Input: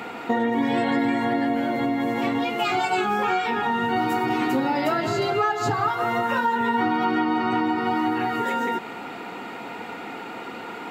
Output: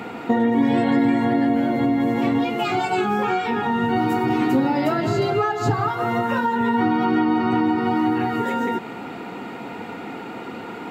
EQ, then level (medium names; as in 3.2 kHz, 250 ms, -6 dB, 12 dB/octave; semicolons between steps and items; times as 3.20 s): bass shelf 390 Hz +10 dB; -1.5 dB